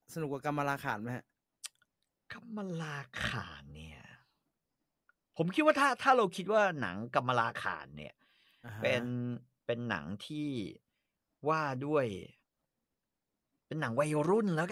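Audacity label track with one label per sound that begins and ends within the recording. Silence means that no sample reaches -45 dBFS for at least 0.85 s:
5.380000	12.260000	sound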